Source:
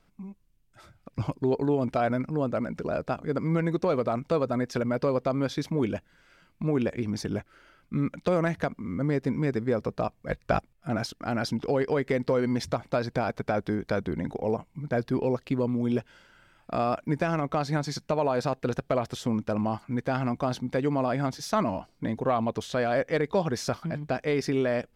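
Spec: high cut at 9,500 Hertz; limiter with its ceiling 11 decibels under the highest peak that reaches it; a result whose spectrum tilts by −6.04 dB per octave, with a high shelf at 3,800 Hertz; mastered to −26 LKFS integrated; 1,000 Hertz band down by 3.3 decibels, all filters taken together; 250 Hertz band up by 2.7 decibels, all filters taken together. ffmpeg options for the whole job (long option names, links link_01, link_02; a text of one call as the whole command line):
ffmpeg -i in.wav -af "lowpass=9500,equalizer=frequency=250:width_type=o:gain=3.5,equalizer=frequency=1000:width_type=o:gain=-5.5,highshelf=frequency=3800:gain=3.5,volume=7dB,alimiter=limit=-16.5dB:level=0:latency=1" out.wav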